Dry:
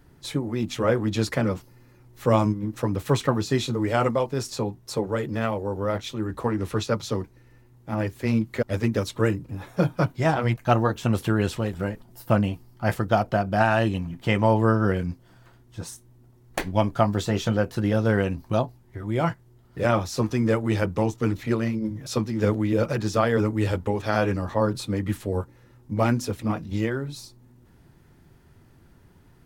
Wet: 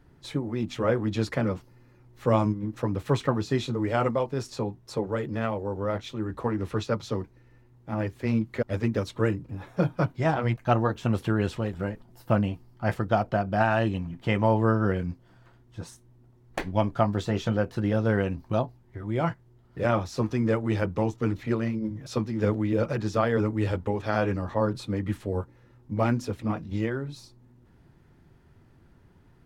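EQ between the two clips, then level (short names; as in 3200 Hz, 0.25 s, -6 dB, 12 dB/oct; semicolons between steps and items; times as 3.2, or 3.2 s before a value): LPF 3600 Hz 6 dB/oct; -2.5 dB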